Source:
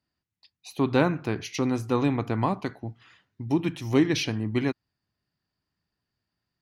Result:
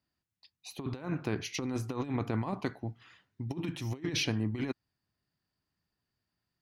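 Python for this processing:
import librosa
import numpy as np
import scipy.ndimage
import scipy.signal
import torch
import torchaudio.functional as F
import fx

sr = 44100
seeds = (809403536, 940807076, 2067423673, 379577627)

y = fx.over_compress(x, sr, threshold_db=-27.0, ratio=-0.5)
y = F.gain(torch.from_numpy(y), -5.5).numpy()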